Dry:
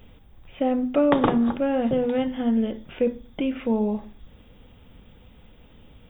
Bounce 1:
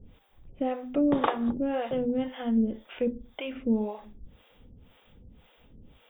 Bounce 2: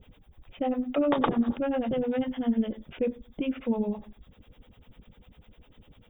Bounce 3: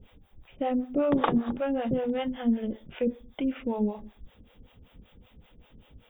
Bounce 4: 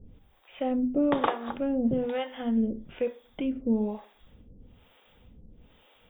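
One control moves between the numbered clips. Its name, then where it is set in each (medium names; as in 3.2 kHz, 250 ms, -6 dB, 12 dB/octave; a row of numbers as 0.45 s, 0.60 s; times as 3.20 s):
harmonic tremolo, rate: 1.9 Hz, 10 Hz, 5.2 Hz, 1.1 Hz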